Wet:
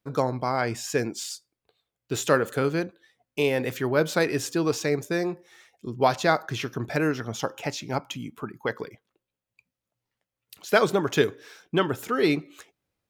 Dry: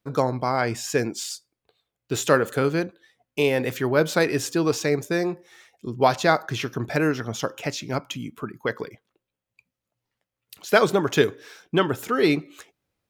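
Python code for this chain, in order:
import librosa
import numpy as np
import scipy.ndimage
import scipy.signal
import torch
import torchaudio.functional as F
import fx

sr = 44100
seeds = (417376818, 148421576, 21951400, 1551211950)

y = fx.peak_eq(x, sr, hz=830.0, db=8.5, octaves=0.28, at=(7.39, 8.73))
y = F.gain(torch.from_numpy(y), -2.5).numpy()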